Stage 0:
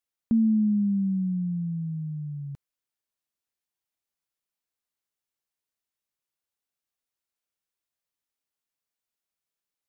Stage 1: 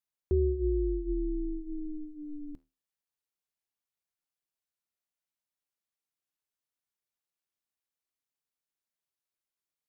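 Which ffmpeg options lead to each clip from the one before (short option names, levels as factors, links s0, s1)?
-af "flanger=delay=8.4:depth=4.6:regen=-72:speed=0.56:shape=sinusoidal,aeval=exprs='val(0)*sin(2*PI*150*n/s)':c=same,volume=1.33"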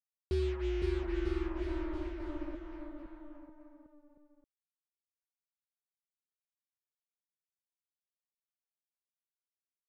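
-af "acrusher=bits=5:mix=0:aa=0.5,aecho=1:1:510|943.5|1312|1625|1891:0.631|0.398|0.251|0.158|0.1,volume=0.531"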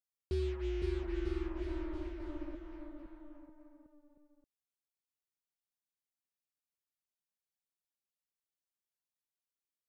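-af "equalizer=f=1200:w=0.5:g=-3,volume=0.794"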